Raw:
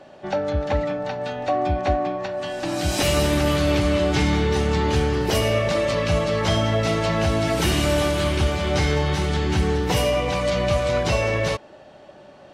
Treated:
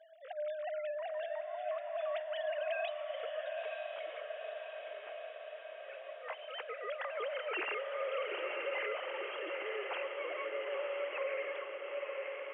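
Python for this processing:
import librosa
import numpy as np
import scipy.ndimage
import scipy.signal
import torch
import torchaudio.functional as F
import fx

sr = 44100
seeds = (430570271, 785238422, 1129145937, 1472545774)

p1 = fx.sine_speech(x, sr)
p2 = fx.doppler_pass(p1, sr, speed_mps=14, closest_m=5.2, pass_at_s=4.68)
p3 = fx.highpass(p2, sr, hz=900.0, slope=6)
p4 = fx.over_compress(p3, sr, threshold_db=-46.0, ratio=-0.5)
p5 = p4 + fx.echo_diffused(p4, sr, ms=942, feedback_pct=69, wet_db=-4.0, dry=0)
y = F.gain(torch.from_numpy(p5), 3.0).numpy()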